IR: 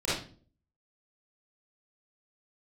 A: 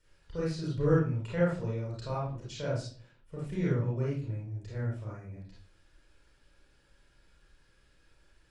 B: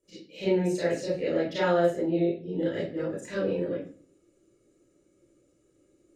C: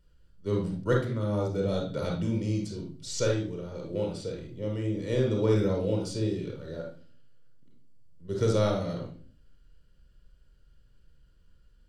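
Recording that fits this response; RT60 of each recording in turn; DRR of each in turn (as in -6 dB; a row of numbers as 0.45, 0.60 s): B; 0.40, 0.40, 0.40 s; -6.0, -11.5, 0.5 dB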